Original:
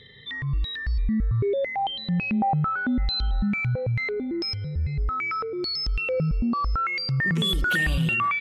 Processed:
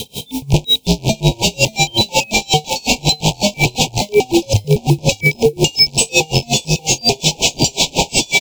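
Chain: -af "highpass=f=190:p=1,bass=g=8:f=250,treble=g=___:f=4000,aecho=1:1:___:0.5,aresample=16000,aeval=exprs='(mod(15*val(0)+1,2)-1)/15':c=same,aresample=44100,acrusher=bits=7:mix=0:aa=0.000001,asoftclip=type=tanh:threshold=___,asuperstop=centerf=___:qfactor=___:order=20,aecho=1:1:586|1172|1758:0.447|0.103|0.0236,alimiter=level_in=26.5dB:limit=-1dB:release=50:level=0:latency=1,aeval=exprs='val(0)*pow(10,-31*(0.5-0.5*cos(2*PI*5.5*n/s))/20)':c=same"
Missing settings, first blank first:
0, 4.1, -22.5dB, 1500, 1.1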